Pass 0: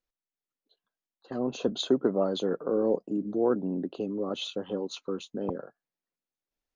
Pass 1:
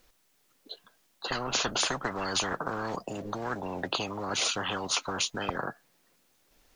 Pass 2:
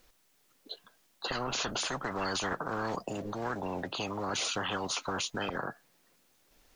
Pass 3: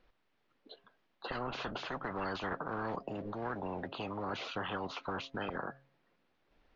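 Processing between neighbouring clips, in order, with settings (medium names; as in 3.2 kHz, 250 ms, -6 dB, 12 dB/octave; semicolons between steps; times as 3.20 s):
spectrum-flattening compressor 10:1
peak limiter -23 dBFS, peak gain reduction 9.5 dB
Gaussian low-pass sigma 2.5 samples; de-hum 135.4 Hz, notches 5; trim -3 dB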